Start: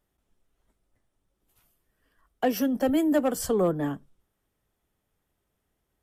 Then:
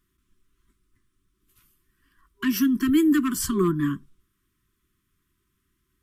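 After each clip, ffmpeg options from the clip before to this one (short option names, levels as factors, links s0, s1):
-af "afftfilt=real='re*(1-between(b*sr/4096,400,980))':imag='im*(1-between(b*sr/4096,400,980))':win_size=4096:overlap=0.75,volume=1.78"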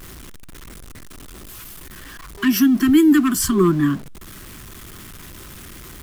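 -af "aeval=exprs='val(0)+0.5*0.0119*sgn(val(0))':c=same,volume=2"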